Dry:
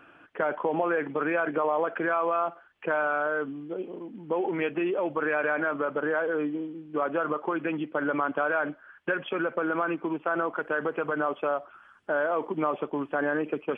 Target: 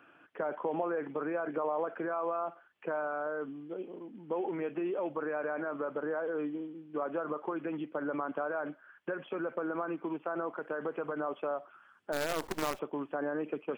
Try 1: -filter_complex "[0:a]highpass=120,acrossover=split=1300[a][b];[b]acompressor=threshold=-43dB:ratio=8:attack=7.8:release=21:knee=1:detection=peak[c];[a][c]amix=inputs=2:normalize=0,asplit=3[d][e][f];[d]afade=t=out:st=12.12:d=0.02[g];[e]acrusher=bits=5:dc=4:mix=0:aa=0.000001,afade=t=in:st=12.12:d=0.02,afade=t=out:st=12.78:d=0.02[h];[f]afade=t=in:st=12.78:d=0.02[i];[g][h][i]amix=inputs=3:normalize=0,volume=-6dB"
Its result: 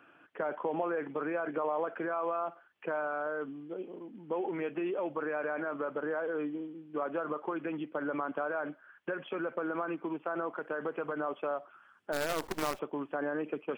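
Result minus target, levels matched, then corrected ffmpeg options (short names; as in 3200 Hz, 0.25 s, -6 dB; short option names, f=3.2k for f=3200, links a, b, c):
compressor: peak gain reduction -6 dB
-filter_complex "[0:a]highpass=120,acrossover=split=1300[a][b];[b]acompressor=threshold=-50dB:ratio=8:attack=7.8:release=21:knee=1:detection=peak[c];[a][c]amix=inputs=2:normalize=0,asplit=3[d][e][f];[d]afade=t=out:st=12.12:d=0.02[g];[e]acrusher=bits=5:dc=4:mix=0:aa=0.000001,afade=t=in:st=12.12:d=0.02,afade=t=out:st=12.78:d=0.02[h];[f]afade=t=in:st=12.78:d=0.02[i];[g][h][i]amix=inputs=3:normalize=0,volume=-6dB"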